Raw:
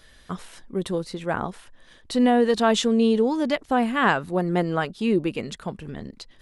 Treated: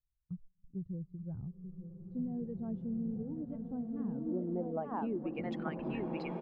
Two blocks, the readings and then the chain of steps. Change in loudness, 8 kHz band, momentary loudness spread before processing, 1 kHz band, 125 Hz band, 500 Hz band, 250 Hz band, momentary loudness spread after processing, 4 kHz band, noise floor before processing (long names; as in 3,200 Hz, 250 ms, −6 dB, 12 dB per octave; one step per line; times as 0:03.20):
−16.5 dB, below −40 dB, 17 LU, −19.5 dB, −9.5 dB, −18.0 dB, −13.0 dB, 12 LU, below −25 dB, −54 dBFS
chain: spectral dynamics exaggerated over time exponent 1.5
on a send: single-tap delay 882 ms −12.5 dB
on the sum: noise gate −46 dBFS, range −16 dB
low-pass filter sweep 140 Hz → 2,100 Hz, 0:03.82–0:05.58
dynamic equaliser 1,700 Hz, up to −4 dB, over −47 dBFS, Q 1.6
downward compressor, threshold −31 dBFS, peak gain reduction 13.5 dB
low-shelf EQ 180 Hz −7.5 dB
slow-attack reverb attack 1,930 ms, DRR 1.5 dB
level −1.5 dB